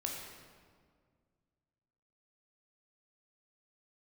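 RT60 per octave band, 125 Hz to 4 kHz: 2.6, 2.4, 2.0, 1.8, 1.4, 1.2 s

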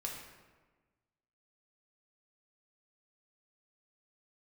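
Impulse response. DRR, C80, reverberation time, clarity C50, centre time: -1.5 dB, 5.5 dB, 1.3 s, 3.0 dB, 51 ms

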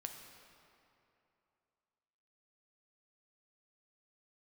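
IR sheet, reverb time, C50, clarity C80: 2.9 s, 5.0 dB, 6.0 dB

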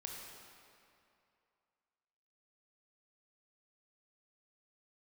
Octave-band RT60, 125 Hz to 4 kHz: 2.4, 2.3, 2.5, 2.6, 2.3, 1.9 s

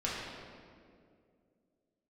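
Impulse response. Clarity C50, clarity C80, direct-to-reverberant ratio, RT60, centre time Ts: -1.0 dB, 1.0 dB, -7.0 dB, 2.3 s, 0.116 s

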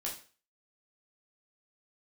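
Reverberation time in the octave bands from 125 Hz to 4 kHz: 0.35, 0.35, 0.40, 0.40, 0.40, 0.40 s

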